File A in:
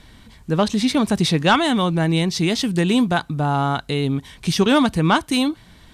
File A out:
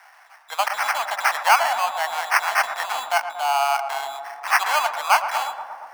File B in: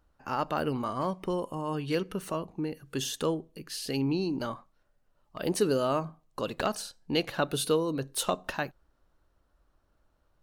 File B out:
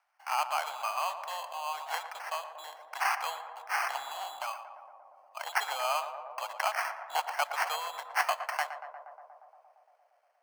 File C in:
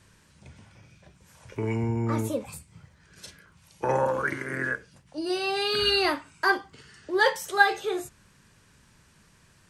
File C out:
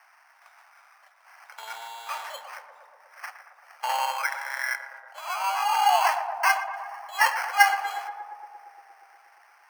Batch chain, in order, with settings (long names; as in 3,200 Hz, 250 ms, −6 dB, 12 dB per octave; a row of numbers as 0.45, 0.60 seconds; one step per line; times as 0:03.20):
parametric band 5,600 Hz +12 dB 0.64 octaves
decimation without filtering 12×
elliptic high-pass filter 730 Hz, stop band 50 dB
high-shelf EQ 2,100 Hz −8.5 dB
tape delay 117 ms, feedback 90%, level −8.5 dB, low-pass 1,400 Hz
level +4.5 dB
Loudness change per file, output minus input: −2.5, −2.0, +1.0 LU